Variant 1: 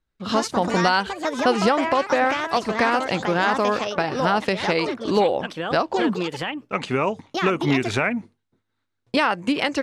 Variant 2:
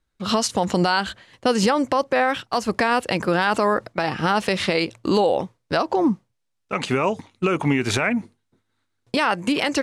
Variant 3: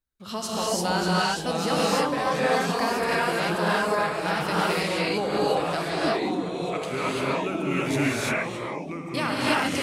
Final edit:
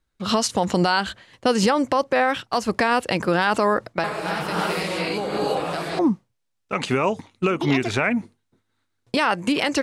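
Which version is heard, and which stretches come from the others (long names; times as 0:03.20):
2
0:04.04–0:05.99: punch in from 3
0:07.50–0:08.03: punch in from 1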